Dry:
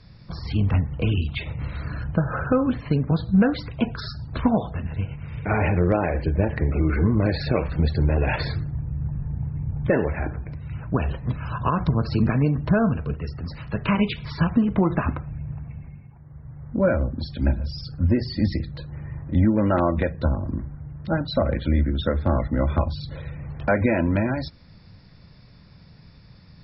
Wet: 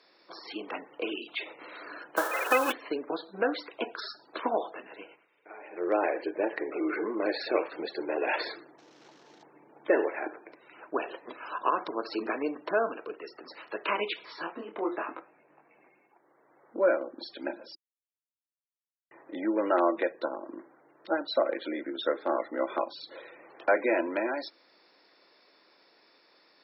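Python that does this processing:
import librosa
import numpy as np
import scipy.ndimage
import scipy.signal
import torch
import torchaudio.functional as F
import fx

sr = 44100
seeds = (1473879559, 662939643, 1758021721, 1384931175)

y = fx.envelope_flatten(x, sr, power=0.3, at=(2.16, 2.71), fade=0.02)
y = fx.cvsd(y, sr, bps=32000, at=(8.78, 9.43))
y = fx.detune_double(y, sr, cents=27, at=(14.25, 15.74), fade=0.02)
y = fx.edit(y, sr, fx.fade_down_up(start_s=4.9, length_s=1.16, db=-19.5, fade_s=0.36, curve='qsin'),
    fx.silence(start_s=17.75, length_s=1.36), tone=tone)
y = scipy.signal.sosfilt(scipy.signal.ellip(4, 1.0, 80, 330.0, 'highpass', fs=sr, output='sos'), y)
y = fx.notch(y, sr, hz=4800.0, q=18.0)
y = y * librosa.db_to_amplitude(-2.0)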